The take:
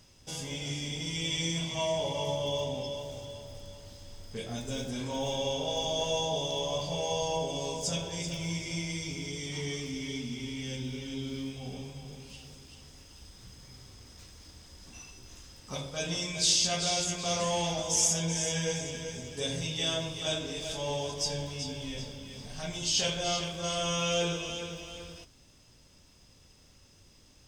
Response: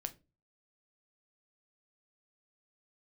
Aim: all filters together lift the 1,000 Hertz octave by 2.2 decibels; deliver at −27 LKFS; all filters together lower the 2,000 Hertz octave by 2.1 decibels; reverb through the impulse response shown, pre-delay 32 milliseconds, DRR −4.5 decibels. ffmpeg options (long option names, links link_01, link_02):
-filter_complex "[0:a]equalizer=frequency=1000:width_type=o:gain=3.5,equalizer=frequency=2000:width_type=o:gain=-3.5,asplit=2[link_01][link_02];[1:a]atrim=start_sample=2205,adelay=32[link_03];[link_02][link_03]afir=irnorm=-1:irlink=0,volume=6.5dB[link_04];[link_01][link_04]amix=inputs=2:normalize=0,volume=-1dB"